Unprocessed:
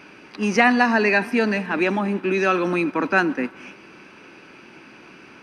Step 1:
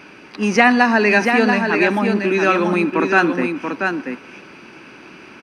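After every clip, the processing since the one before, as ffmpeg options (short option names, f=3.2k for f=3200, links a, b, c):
-af "aecho=1:1:684:0.531,volume=3.5dB"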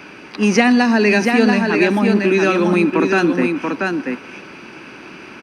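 -filter_complex "[0:a]acrossover=split=460|3000[a][b][c];[b]acompressor=threshold=-27dB:ratio=2.5[d];[a][d][c]amix=inputs=3:normalize=0,volume=4dB"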